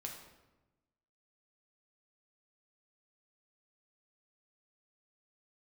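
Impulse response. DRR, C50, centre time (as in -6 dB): 0.5 dB, 5.0 dB, 36 ms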